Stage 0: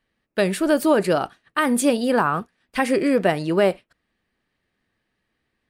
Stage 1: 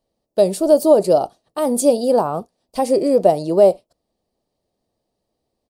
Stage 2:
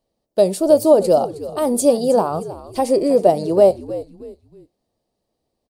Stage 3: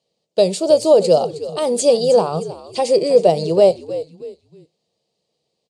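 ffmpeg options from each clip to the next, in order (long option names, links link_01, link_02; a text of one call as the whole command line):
ffmpeg -i in.wav -af "firequalizer=gain_entry='entry(240,0);entry(620,10);entry(1600,-19);entry(4600,4)':delay=0.05:min_phase=1,volume=-1dB" out.wav
ffmpeg -i in.wav -filter_complex "[0:a]asplit=4[link_01][link_02][link_03][link_04];[link_02]adelay=315,afreqshift=-76,volume=-15dB[link_05];[link_03]adelay=630,afreqshift=-152,volume=-24.6dB[link_06];[link_04]adelay=945,afreqshift=-228,volume=-34.3dB[link_07];[link_01][link_05][link_06][link_07]amix=inputs=4:normalize=0" out.wav
ffmpeg -i in.wav -af "aexciter=amount=2.2:drive=8.9:freq=2300,highpass=130,equalizer=frequency=160:width_type=q:width=4:gain=9,equalizer=frequency=270:width_type=q:width=4:gain=-8,equalizer=frequency=470:width_type=q:width=4:gain=7,equalizer=frequency=5700:width_type=q:width=4:gain=-6,lowpass=frequency=6600:width=0.5412,lowpass=frequency=6600:width=1.3066,volume=-1.5dB" out.wav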